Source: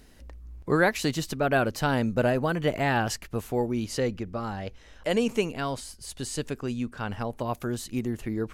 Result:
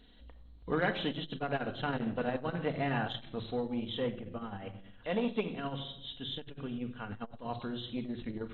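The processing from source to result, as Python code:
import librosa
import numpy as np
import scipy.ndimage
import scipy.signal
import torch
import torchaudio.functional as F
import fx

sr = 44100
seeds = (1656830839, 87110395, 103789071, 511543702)

y = fx.freq_compress(x, sr, knee_hz=2700.0, ratio=4.0)
y = fx.room_shoebox(y, sr, seeds[0], volume_m3=2400.0, walls='furnished', distance_m=1.8)
y = fx.transformer_sat(y, sr, knee_hz=440.0)
y = F.gain(torch.from_numpy(y), -8.0).numpy()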